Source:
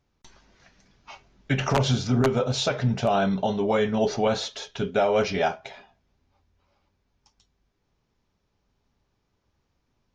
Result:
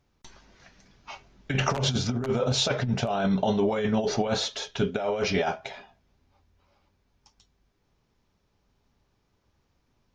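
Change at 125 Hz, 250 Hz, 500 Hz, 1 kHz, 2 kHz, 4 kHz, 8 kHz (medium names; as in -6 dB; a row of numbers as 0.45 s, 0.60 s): -2.5 dB, -1.5 dB, -3.5 dB, -4.0 dB, -1.5 dB, +1.5 dB, +2.0 dB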